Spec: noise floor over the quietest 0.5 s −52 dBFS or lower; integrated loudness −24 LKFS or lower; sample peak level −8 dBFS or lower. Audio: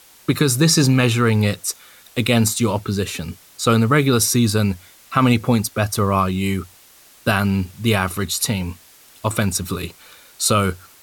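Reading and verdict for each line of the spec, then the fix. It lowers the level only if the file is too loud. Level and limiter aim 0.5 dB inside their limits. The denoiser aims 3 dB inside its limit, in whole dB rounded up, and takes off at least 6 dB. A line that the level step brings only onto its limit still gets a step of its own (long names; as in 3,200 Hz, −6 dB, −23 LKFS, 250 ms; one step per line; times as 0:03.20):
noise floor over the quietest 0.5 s −49 dBFS: out of spec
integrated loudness −19.0 LKFS: out of spec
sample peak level −5.5 dBFS: out of spec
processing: level −5.5 dB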